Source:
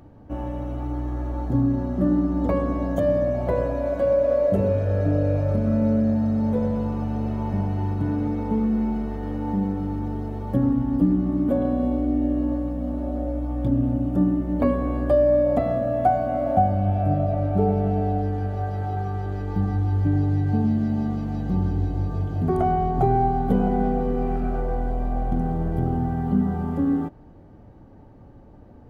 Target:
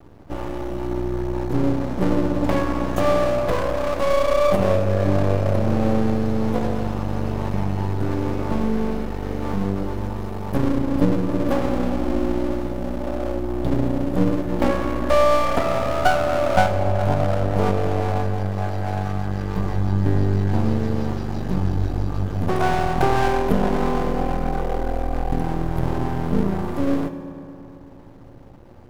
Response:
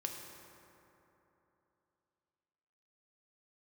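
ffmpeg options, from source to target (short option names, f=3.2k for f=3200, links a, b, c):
-filter_complex "[0:a]aeval=exprs='max(val(0),0)':c=same,highshelf=f=2.5k:g=10.5,asplit=2[a][b];[1:a]atrim=start_sample=2205[c];[b][c]afir=irnorm=-1:irlink=0,volume=1dB[d];[a][d]amix=inputs=2:normalize=0,volume=-1dB"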